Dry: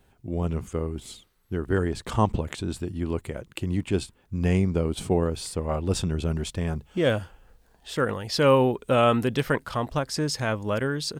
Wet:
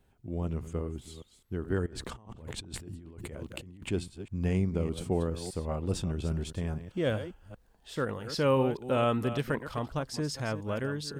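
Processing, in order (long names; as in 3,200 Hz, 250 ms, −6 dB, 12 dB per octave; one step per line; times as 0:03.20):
delay that plays each chunk backwards 204 ms, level −11.5 dB
low-shelf EQ 440 Hz +3.5 dB
0:01.86–0:03.91: compressor whose output falls as the input rises −36 dBFS, ratio −1
level −8.5 dB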